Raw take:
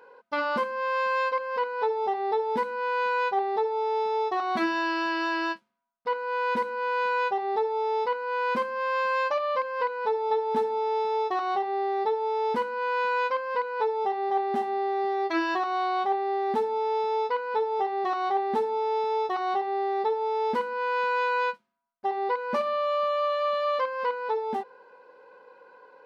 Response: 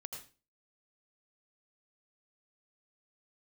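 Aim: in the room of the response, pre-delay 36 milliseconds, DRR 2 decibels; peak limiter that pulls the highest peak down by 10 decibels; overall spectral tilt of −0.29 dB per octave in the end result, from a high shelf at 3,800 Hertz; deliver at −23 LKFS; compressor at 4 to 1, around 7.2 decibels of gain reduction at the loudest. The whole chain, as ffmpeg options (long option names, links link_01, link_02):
-filter_complex "[0:a]highshelf=frequency=3800:gain=3,acompressor=threshold=-30dB:ratio=4,alimiter=level_in=6dB:limit=-24dB:level=0:latency=1,volume=-6dB,asplit=2[link_01][link_02];[1:a]atrim=start_sample=2205,adelay=36[link_03];[link_02][link_03]afir=irnorm=-1:irlink=0,volume=1dB[link_04];[link_01][link_04]amix=inputs=2:normalize=0,volume=12dB"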